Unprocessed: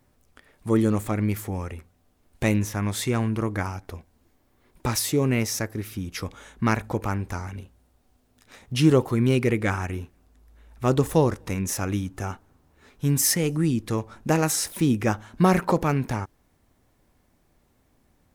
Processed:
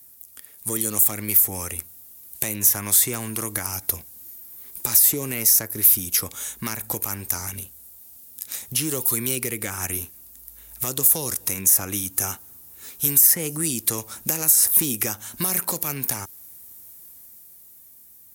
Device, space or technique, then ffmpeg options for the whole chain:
FM broadcast chain: -filter_complex "[0:a]highpass=55,dynaudnorm=f=120:g=21:m=2.24,acrossover=split=320|2000[s0][s1][s2];[s0]acompressor=threshold=0.0355:ratio=4[s3];[s1]acompressor=threshold=0.0501:ratio=4[s4];[s2]acompressor=threshold=0.0126:ratio=4[s5];[s3][s4][s5]amix=inputs=3:normalize=0,aemphasis=mode=production:type=75fm,alimiter=limit=0.188:level=0:latency=1:release=154,asoftclip=type=hard:threshold=0.141,lowpass=f=15000:w=0.5412,lowpass=f=15000:w=1.3066,aemphasis=mode=production:type=75fm,volume=0.708"

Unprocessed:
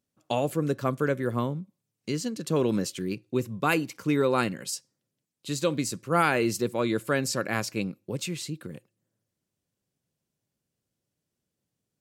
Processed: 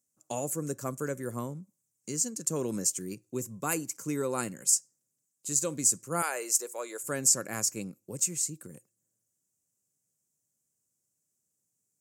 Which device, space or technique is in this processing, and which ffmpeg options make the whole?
budget condenser microphone: -filter_complex "[0:a]highpass=79,highshelf=f=5100:t=q:w=3:g=12.5,asettb=1/sr,asplit=3[s0][s1][s2];[s0]atrim=end=6.224[s3];[s1]atrim=start=6.22:end=7.04,asetpts=PTS-STARTPTS,afade=t=in:d=0.004:c=qsin,afade=t=out:st=0.816:d=0.004:c=qsin,highpass=f=450:w=0.5412,highpass=f=450:w=1.3066[s4];[s2]atrim=start=7.036[s5];[s3][s4]acrossfade=d=0.004:c1=hsin:c2=qsin[s6];[s6][s5]acrossfade=d=0.004:c1=qsin:c2=hsin,volume=0.422"

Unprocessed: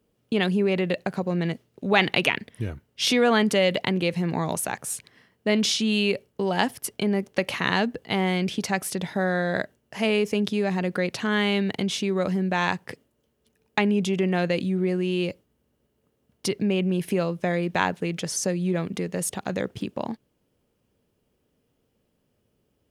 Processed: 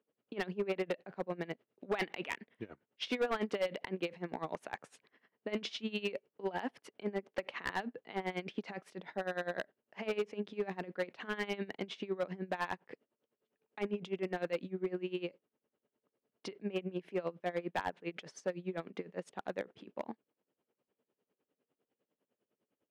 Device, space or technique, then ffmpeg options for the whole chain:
helicopter radio: -af "highpass=300,lowpass=2500,aeval=exprs='val(0)*pow(10,-20*(0.5-0.5*cos(2*PI*9.9*n/s))/20)':c=same,asoftclip=type=hard:threshold=0.075,volume=0.596"

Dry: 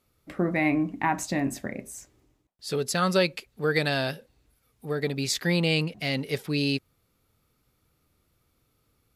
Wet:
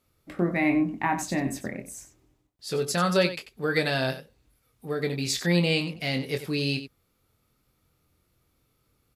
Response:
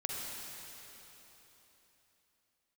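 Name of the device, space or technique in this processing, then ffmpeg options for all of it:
slapback doubling: -filter_complex "[0:a]asplit=3[s0][s1][s2];[s1]adelay=23,volume=0.422[s3];[s2]adelay=92,volume=0.251[s4];[s0][s3][s4]amix=inputs=3:normalize=0,volume=0.891"

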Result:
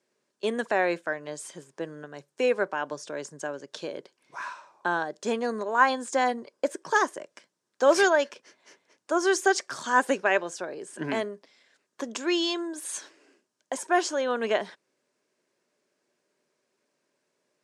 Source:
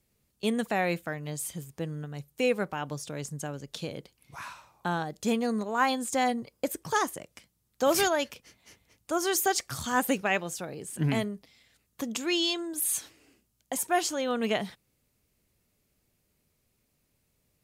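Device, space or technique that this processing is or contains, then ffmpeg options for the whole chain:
television speaker: -af "highpass=f=200:w=0.5412,highpass=f=200:w=1.3066,equalizer=f=200:t=q:w=4:g=-5,equalizer=f=380:t=q:w=4:g=8,equalizer=f=590:t=q:w=4:g=8,equalizer=f=1000:t=q:w=4:g=8,equalizer=f=1600:t=q:w=4:g=10,equalizer=f=5500:t=q:w=4:g=3,lowpass=f=8500:w=0.5412,lowpass=f=8500:w=1.3066,volume=0.794"

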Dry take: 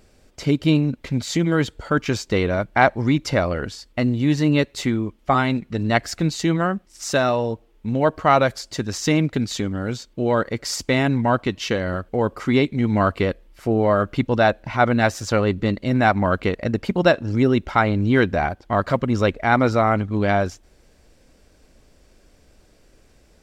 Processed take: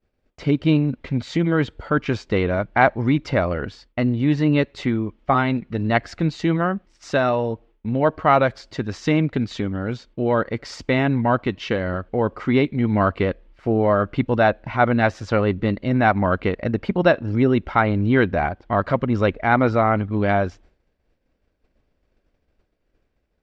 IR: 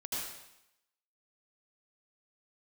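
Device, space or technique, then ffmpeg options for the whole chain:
hearing-loss simulation: -af "lowpass=3100,agate=range=0.0224:threshold=0.00708:ratio=3:detection=peak"

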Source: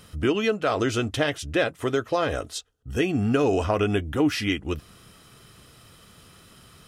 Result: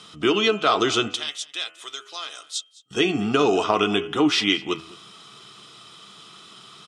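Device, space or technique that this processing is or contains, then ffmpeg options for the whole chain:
television speaker: -filter_complex "[0:a]asettb=1/sr,asplit=3[s0][s1][s2];[s0]atrim=end=1.144[s3];[s1]atrim=start=1.14:end=2.91,asetpts=PTS-STARTPTS,afade=t=in:d=0.004:c=qsin,afade=t=out:st=1.766:d=0.004:c=qsin,aderivative[s4];[s2]atrim=start=2.906[s5];[s3][s4]acrossfade=d=0.004:c1=hsin:c2=qsin[s6];[s6][s5]acrossfade=d=0.004:c1=qsin:c2=hsin,highpass=f=170:w=0.5412,highpass=f=170:w=1.3066,equalizer=f=250:t=q:w=4:g=-10,equalizer=f=540:t=q:w=4:g=-10,equalizer=f=1200:t=q:w=4:g=5,equalizer=f=1700:t=q:w=4:g=-7,equalizer=f=3500:t=q:w=4:g=9,lowpass=f=8100:w=0.5412,lowpass=f=8100:w=1.3066,equalizer=f=170:w=5.4:g=-4.5,aecho=1:1:209:0.0841,bandreject=f=82.05:t=h:w=4,bandreject=f=164.1:t=h:w=4,bandreject=f=246.15:t=h:w=4,bandreject=f=328.2:t=h:w=4,bandreject=f=410.25:t=h:w=4,bandreject=f=492.3:t=h:w=4,bandreject=f=574.35:t=h:w=4,bandreject=f=656.4:t=h:w=4,bandreject=f=738.45:t=h:w=4,bandreject=f=820.5:t=h:w=4,bandreject=f=902.55:t=h:w=4,bandreject=f=984.6:t=h:w=4,bandreject=f=1066.65:t=h:w=4,bandreject=f=1148.7:t=h:w=4,bandreject=f=1230.75:t=h:w=4,bandreject=f=1312.8:t=h:w=4,bandreject=f=1394.85:t=h:w=4,bandreject=f=1476.9:t=h:w=4,bandreject=f=1558.95:t=h:w=4,bandreject=f=1641:t=h:w=4,bandreject=f=1723.05:t=h:w=4,bandreject=f=1805.1:t=h:w=4,bandreject=f=1887.15:t=h:w=4,bandreject=f=1969.2:t=h:w=4,bandreject=f=2051.25:t=h:w=4,bandreject=f=2133.3:t=h:w=4,bandreject=f=2215.35:t=h:w=4,bandreject=f=2297.4:t=h:w=4,bandreject=f=2379.45:t=h:w=4,bandreject=f=2461.5:t=h:w=4,bandreject=f=2543.55:t=h:w=4,bandreject=f=2625.6:t=h:w=4,bandreject=f=2707.65:t=h:w=4,bandreject=f=2789.7:t=h:w=4,bandreject=f=2871.75:t=h:w=4,bandreject=f=2953.8:t=h:w=4,bandreject=f=3035.85:t=h:w=4,bandreject=f=3117.9:t=h:w=4,bandreject=f=3199.95:t=h:w=4,volume=2"

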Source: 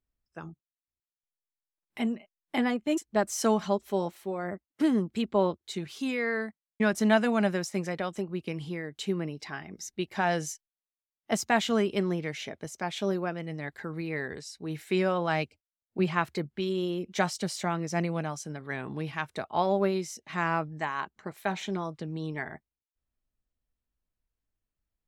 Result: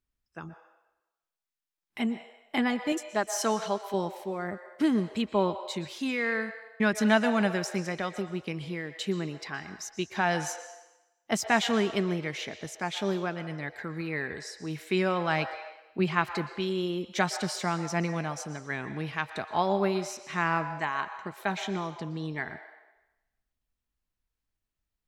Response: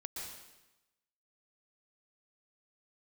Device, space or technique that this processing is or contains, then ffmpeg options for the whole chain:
filtered reverb send: -filter_complex "[0:a]asplit=2[s0][s1];[s1]highpass=f=510:w=0.5412,highpass=f=510:w=1.3066,lowpass=7000[s2];[1:a]atrim=start_sample=2205[s3];[s2][s3]afir=irnorm=-1:irlink=0,volume=0.562[s4];[s0][s4]amix=inputs=2:normalize=0,asettb=1/sr,asplit=3[s5][s6][s7];[s5]atrim=end=2.924[s8];[s6]atrim=start=2.92:end=3.94,asetpts=PTS-STARTPTS,afade=t=in:d=0.004:c=qsin,afade=t=out:st=1.016:d=0.004:c=qsin,lowshelf=f=220:g=-11.5[s9];[s7]atrim=start=3.936[s10];[s8][s9]acrossfade=d=0.004:c1=hsin:c2=qsin[s11];[s11][s10]acrossfade=d=0.004:c1=qsin:c2=hsin"

